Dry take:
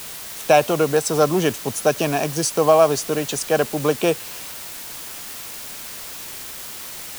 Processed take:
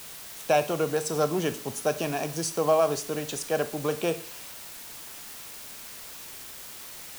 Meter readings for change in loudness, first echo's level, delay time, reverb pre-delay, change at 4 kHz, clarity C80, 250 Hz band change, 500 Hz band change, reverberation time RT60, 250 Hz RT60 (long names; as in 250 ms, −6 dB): −8.0 dB, no echo audible, no echo audible, 24 ms, −8.0 dB, 19.5 dB, −8.5 dB, −8.0 dB, 0.40 s, 0.45 s